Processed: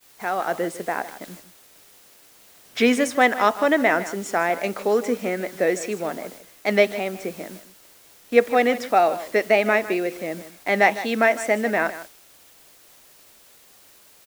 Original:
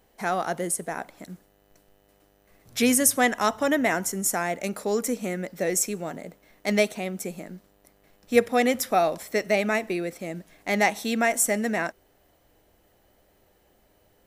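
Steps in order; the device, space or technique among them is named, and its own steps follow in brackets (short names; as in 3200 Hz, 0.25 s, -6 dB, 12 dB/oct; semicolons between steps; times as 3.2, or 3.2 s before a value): dictaphone (BPF 280–3200 Hz; AGC gain up to 6.5 dB; wow and flutter; white noise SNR 22 dB); expander -39 dBFS; echo 0.155 s -14.5 dB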